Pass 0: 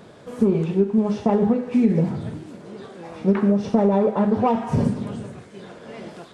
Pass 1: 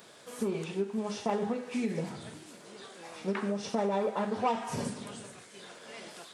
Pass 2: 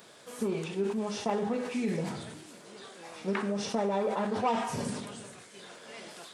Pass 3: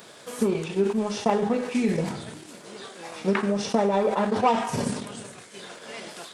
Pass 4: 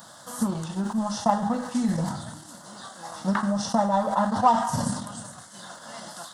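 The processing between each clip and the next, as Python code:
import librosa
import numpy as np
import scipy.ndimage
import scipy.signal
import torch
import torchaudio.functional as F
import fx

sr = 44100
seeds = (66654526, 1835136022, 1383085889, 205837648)

y1 = fx.tilt_eq(x, sr, slope=4.0)
y1 = y1 * 10.0 ** (-6.5 / 20.0)
y2 = fx.sustainer(y1, sr, db_per_s=48.0)
y3 = fx.transient(y2, sr, attack_db=2, sustain_db=-7)
y3 = y3 * 10.0 ** (7.0 / 20.0)
y4 = fx.fixed_phaser(y3, sr, hz=1000.0, stages=4)
y4 = y4 * 10.0 ** (4.0 / 20.0)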